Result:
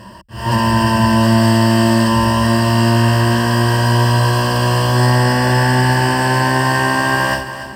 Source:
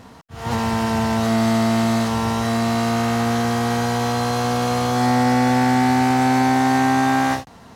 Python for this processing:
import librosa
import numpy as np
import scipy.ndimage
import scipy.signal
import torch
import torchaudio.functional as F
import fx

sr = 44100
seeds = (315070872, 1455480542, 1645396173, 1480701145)

y = fx.ripple_eq(x, sr, per_octave=1.3, db=17)
y = fx.echo_feedback(y, sr, ms=286, feedback_pct=49, wet_db=-12)
y = y * librosa.db_to_amplitude(3.5)